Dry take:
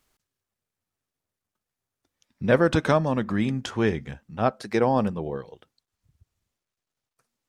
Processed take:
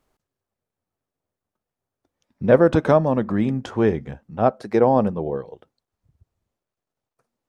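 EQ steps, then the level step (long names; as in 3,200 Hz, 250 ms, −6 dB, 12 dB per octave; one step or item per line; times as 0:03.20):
low-shelf EQ 350 Hz +9 dB
parametric band 640 Hz +11 dB 2.5 octaves
−7.0 dB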